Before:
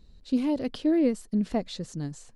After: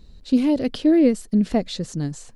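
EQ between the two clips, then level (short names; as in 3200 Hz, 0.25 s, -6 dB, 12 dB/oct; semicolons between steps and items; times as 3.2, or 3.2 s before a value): dynamic EQ 1000 Hz, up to -5 dB, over -48 dBFS, Q 1.9; +7.5 dB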